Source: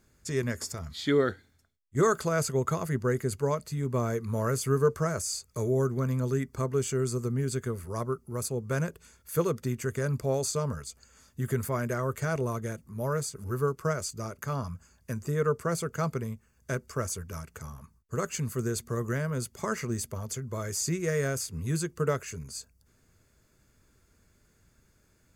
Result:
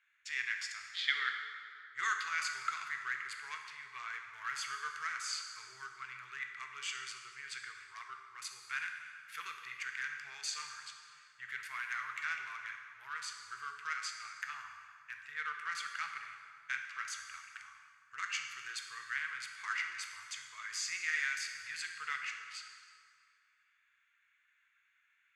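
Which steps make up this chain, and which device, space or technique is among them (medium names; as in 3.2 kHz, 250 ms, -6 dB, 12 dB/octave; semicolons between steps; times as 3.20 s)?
local Wiener filter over 9 samples; inverse Chebyshev high-pass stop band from 610 Hz, stop band 60 dB; phone in a pocket (low-pass 3.1 kHz 12 dB/octave; peaking EQ 280 Hz +4 dB 2.3 oct; treble shelf 2 kHz -10 dB); treble shelf 11 kHz +3.5 dB; plate-style reverb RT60 2.3 s, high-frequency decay 0.7×, DRR 3 dB; trim +15 dB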